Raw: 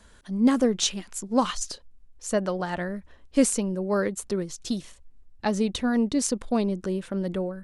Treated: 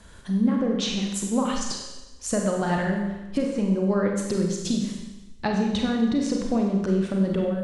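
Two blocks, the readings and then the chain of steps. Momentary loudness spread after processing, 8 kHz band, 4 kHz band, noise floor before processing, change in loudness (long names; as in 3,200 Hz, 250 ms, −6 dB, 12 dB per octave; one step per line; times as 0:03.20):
8 LU, −3.0 dB, +0.5 dB, −54 dBFS, +1.5 dB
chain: treble cut that deepens with the level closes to 2,300 Hz, closed at −18.5 dBFS
parametric band 130 Hz +6.5 dB 1.2 octaves
downward compressor 5 to 1, threshold −26 dBFS, peak gain reduction 12 dB
four-comb reverb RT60 1.1 s, combs from 31 ms, DRR 0.5 dB
level +3.5 dB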